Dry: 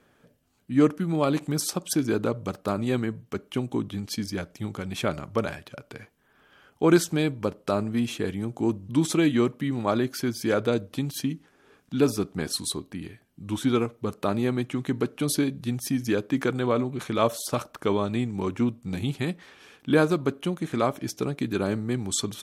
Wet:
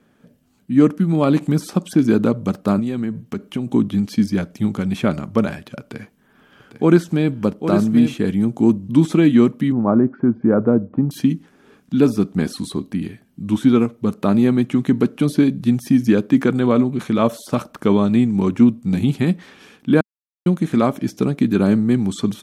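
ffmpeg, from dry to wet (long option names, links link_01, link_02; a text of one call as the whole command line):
ffmpeg -i in.wav -filter_complex "[0:a]asettb=1/sr,asplit=3[link_01][link_02][link_03];[link_01]atrim=end=2.794[link_04];[link_02]atrim=start=2.79:end=3.67,asetpts=PTS-STARTPTS,afade=type=in:duration=0.004:curve=qsin,afade=type=out:start_time=0.876:duration=0.004:curve=qsin,acompressor=threshold=-32dB:ratio=3:attack=3.2:release=140:knee=1:detection=peak[link_05];[link_03]atrim=start=3.666[link_06];[link_04][link_05]acrossfade=duration=0.004:curve1=hsin:curve2=qsin[link_07];[link_07][link_06]acrossfade=duration=0.004:curve1=qsin:curve2=hsin,asettb=1/sr,asplit=3[link_08][link_09][link_10];[link_08]atrim=end=5.804[link_11];[link_09]atrim=start=5.8:end=8.14,asetpts=PTS-STARTPTS,afade=type=in:duration=0.004:curve=qsin,afade=type=out:start_time=2.336:duration=0.004:curve=qsin,aecho=1:1:800:0.355,atrim=end_sample=103194[link_12];[link_10]atrim=start=8.136[link_13];[link_11][link_12]acrossfade=duration=0.004:curve1=hsin:curve2=qsin[link_14];[link_14][link_13]acrossfade=duration=0.004:curve1=qsin:curve2=hsin,asettb=1/sr,asplit=3[link_15][link_16][link_17];[link_15]atrim=end=9.724[link_18];[link_16]atrim=start=9.72:end=11.11,asetpts=PTS-STARTPTS,afade=type=in:duration=0.004:curve=qsin,afade=type=out:start_time=1.386:duration=0.004:curve=qsin,lowpass=frequency=1300:width=0.5412,lowpass=frequency=1300:width=1.3066[link_19];[link_17]atrim=start=11.106[link_20];[link_18][link_19]acrossfade=duration=0.004:curve1=hsin:curve2=qsin[link_21];[link_21][link_20]acrossfade=duration=0.004:curve1=qsin:curve2=hsin,asplit=3[link_22][link_23][link_24];[link_22]atrim=end=20.01,asetpts=PTS-STARTPTS,afade=type=out:start_time=20.006:duration=0.004:curve=hsin[link_25];[link_23]atrim=start=20.01:end=20.46,asetpts=PTS-STARTPTS,volume=0[link_26];[link_24]atrim=start=20.46,asetpts=PTS-STARTPTS,afade=type=in:duration=0.004:curve=hsin[link_27];[link_25][link_26][link_27]concat=n=3:v=0:a=1,acrossover=split=2800[link_28][link_29];[link_29]acompressor=threshold=-40dB:ratio=4:attack=1:release=60[link_30];[link_28][link_30]amix=inputs=2:normalize=0,equalizer=frequency=210:width_type=o:width=0.94:gain=10.5,dynaudnorm=framelen=180:gausssize=3:maxgain=5.5dB" out.wav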